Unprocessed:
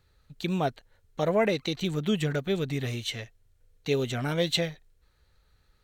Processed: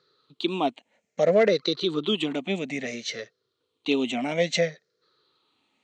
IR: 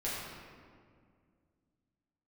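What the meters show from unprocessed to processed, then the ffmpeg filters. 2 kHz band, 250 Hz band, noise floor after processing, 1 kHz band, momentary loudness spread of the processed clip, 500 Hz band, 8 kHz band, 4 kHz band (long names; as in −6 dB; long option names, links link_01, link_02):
+3.5 dB, +2.0 dB, −78 dBFS, +2.5 dB, 13 LU, +4.5 dB, +2.0 dB, +3.0 dB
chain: -af "afftfilt=real='re*pow(10,13/40*sin(2*PI*(0.59*log(max(b,1)*sr/1024/100)/log(2)-(-0.6)*(pts-256)/sr)))':imag='im*pow(10,13/40*sin(2*PI*(0.59*log(max(b,1)*sr/1024/100)/log(2)-(-0.6)*(pts-256)/sr)))':win_size=1024:overlap=0.75,volume=14.5dB,asoftclip=hard,volume=-14.5dB,highpass=frequency=210:width=0.5412,highpass=frequency=210:width=1.3066,equalizer=frequency=840:width_type=q:width=4:gain=-5,equalizer=frequency=1600:width_type=q:width=4:gain=-7,equalizer=frequency=5500:width_type=q:width=4:gain=-3,lowpass=frequency=6500:width=0.5412,lowpass=frequency=6500:width=1.3066,volume=3dB"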